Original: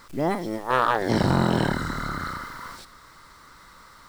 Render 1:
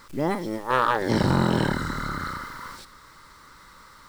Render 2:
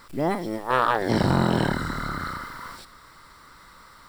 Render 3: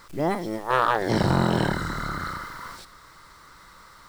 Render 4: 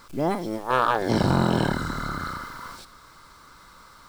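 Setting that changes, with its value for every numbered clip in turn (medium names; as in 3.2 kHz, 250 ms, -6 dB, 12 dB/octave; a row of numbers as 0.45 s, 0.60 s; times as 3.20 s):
band-stop, frequency: 700 Hz, 6.4 kHz, 250 Hz, 1.9 kHz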